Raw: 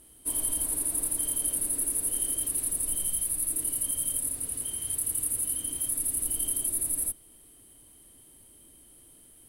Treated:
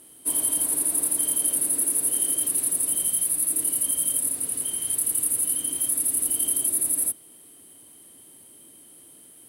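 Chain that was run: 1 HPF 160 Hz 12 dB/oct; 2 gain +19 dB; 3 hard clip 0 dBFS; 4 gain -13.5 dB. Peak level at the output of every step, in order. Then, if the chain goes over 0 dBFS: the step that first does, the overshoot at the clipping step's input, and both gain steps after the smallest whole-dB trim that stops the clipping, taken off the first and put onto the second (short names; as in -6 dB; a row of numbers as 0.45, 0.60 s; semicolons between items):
-14.0, +5.0, 0.0, -13.5 dBFS; step 2, 5.0 dB; step 2 +14 dB, step 4 -8.5 dB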